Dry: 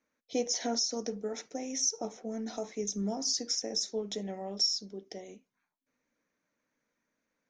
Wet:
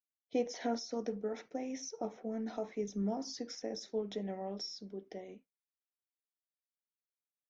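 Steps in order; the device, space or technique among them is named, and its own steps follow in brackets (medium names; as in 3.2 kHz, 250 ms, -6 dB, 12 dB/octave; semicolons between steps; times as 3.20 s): hearing-loss simulation (low-pass 2.7 kHz 12 dB/octave; expander -51 dBFS); trim -1.5 dB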